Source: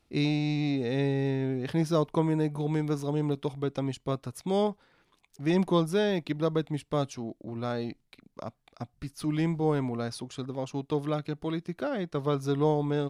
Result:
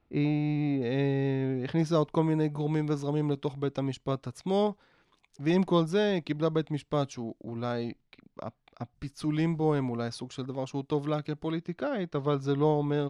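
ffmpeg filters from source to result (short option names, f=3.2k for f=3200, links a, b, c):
-af "asetnsamples=n=441:p=0,asendcmd='0.82 lowpass f 4300;1.79 lowpass f 7300;7.89 lowpass f 4200;8.95 lowpass f 8300;11.51 lowpass f 5100',lowpass=2k"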